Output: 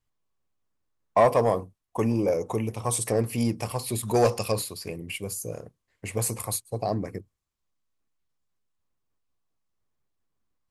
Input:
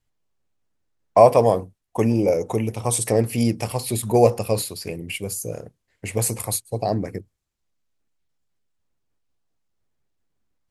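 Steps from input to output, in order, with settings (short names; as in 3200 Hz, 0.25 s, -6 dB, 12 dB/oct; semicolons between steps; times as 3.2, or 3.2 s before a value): 4.08–4.52 bell 4700 Hz +10 dB 2.4 oct; soft clip -8 dBFS, distortion -15 dB; bell 1100 Hz +7 dB 0.29 oct; gain -4.5 dB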